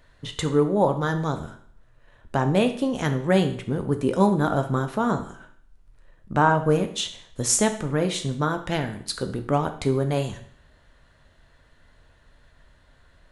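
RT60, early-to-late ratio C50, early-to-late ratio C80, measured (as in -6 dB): 0.60 s, 11.0 dB, 14.5 dB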